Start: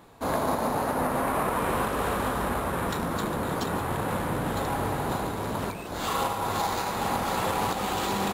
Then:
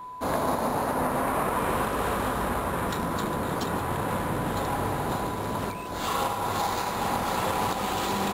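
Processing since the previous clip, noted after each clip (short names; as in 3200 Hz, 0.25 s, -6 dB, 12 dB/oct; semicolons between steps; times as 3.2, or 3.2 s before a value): whine 1000 Hz -37 dBFS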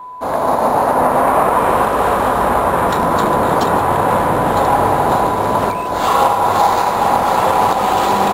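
bell 750 Hz +10 dB 1.8 oct; AGC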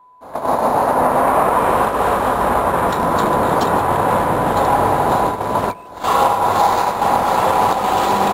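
gate -15 dBFS, range -15 dB; gain -1.5 dB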